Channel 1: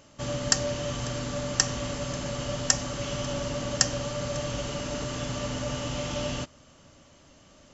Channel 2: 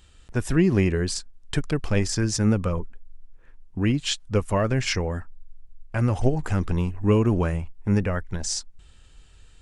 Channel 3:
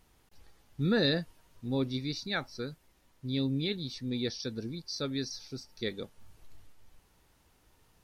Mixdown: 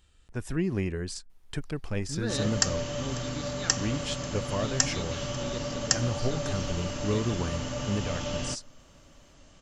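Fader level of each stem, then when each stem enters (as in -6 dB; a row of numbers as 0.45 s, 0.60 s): -2.0 dB, -9.0 dB, -7.0 dB; 2.10 s, 0.00 s, 1.30 s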